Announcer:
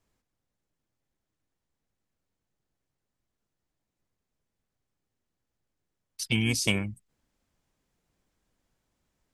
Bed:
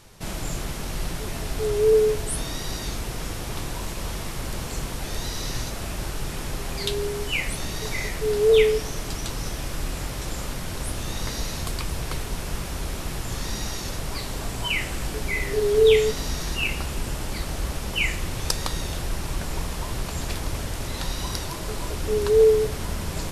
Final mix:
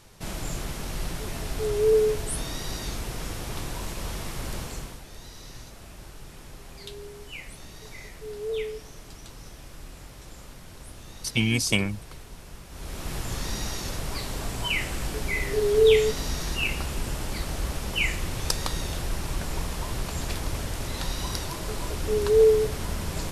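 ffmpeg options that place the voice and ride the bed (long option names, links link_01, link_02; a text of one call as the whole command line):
ffmpeg -i stem1.wav -i stem2.wav -filter_complex "[0:a]adelay=5050,volume=2.5dB[link_01];[1:a]volume=10dB,afade=type=out:start_time=4.56:duration=0.48:silence=0.266073,afade=type=in:start_time=12.69:duration=0.47:silence=0.237137[link_02];[link_01][link_02]amix=inputs=2:normalize=0" out.wav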